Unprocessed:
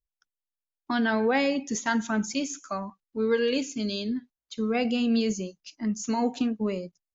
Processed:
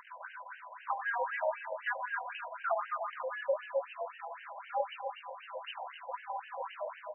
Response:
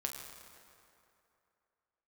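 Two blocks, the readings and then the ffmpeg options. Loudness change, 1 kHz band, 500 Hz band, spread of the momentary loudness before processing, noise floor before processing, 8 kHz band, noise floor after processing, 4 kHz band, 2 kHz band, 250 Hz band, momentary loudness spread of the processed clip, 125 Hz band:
-10.0 dB, -2.0 dB, -8.0 dB, 11 LU, under -85 dBFS, n/a, -53 dBFS, -15.5 dB, -5.0 dB, under -40 dB, 12 LU, under -40 dB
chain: -filter_complex "[0:a]aeval=exprs='val(0)+0.5*0.0299*sgn(val(0))':c=same,equalizer=f=2.3k:t=o:w=1.1:g=-6,acompressor=threshold=-32dB:ratio=5,highpass=f=220:t=q:w=0.5412,highpass=f=220:t=q:w=1.307,lowpass=f=3.4k:t=q:w=0.5176,lowpass=f=3.4k:t=q:w=0.7071,lowpass=f=3.4k:t=q:w=1.932,afreqshift=77,aeval=exprs='val(0)+0.00355*sin(2*PI*1000*n/s)':c=same,aecho=1:1:296:0.398[a];[1:a]atrim=start_sample=2205,afade=t=out:st=0.25:d=0.01,atrim=end_sample=11466[b];[a][b]afir=irnorm=-1:irlink=0,afftfilt=real='re*between(b*sr/1024,680*pow(2200/680,0.5+0.5*sin(2*PI*3.9*pts/sr))/1.41,680*pow(2200/680,0.5+0.5*sin(2*PI*3.9*pts/sr))*1.41)':imag='im*between(b*sr/1024,680*pow(2200/680,0.5+0.5*sin(2*PI*3.9*pts/sr))/1.41,680*pow(2200/680,0.5+0.5*sin(2*PI*3.9*pts/sr))*1.41)':win_size=1024:overlap=0.75,volume=7dB"

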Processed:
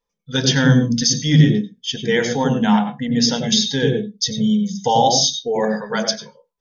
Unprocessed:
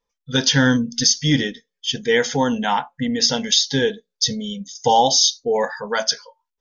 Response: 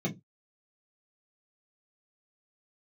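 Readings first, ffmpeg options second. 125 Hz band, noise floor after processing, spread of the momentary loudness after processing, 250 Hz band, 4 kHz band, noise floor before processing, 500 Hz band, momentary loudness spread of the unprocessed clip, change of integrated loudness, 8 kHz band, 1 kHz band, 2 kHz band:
+8.0 dB, -80 dBFS, 8 LU, +5.0 dB, -1.0 dB, -82 dBFS, +0.5 dB, 9 LU, +1.5 dB, n/a, 0.0 dB, -1.0 dB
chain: -filter_complex "[0:a]asplit=2[a][b];[1:a]atrim=start_sample=2205,lowpass=6k,adelay=91[c];[b][c]afir=irnorm=-1:irlink=0,volume=-10dB[d];[a][d]amix=inputs=2:normalize=0,volume=-1.5dB"

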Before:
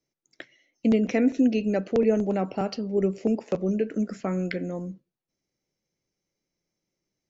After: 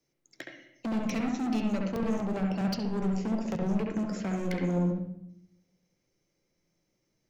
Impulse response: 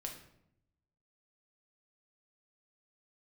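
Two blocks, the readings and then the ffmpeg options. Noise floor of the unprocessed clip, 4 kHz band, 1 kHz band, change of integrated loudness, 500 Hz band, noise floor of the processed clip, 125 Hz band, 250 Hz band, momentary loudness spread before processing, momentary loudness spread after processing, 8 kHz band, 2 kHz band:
-85 dBFS, 0.0 dB, -2.0 dB, -5.0 dB, -9.5 dB, -78 dBFS, +0.5 dB, -4.0 dB, 8 LU, 16 LU, n/a, -3.5 dB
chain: -filter_complex "[0:a]acrossover=split=180|3000[a][b][c];[b]acompressor=threshold=-36dB:ratio=4[d];[a][d][c]amix=inputs=3:normalize=0,asoftclip=type=hard:threshold=-33.5dB,asplit=2[e][f];[1:a]atrim=start_sample=2205,lowpass=3k,adelay=68[g];[f][g]afir=irnorm=-1:irlink=0,volume=1.5dB[h];[e][h]amix=inputs=2:normalize=0,volume=3.5dB"

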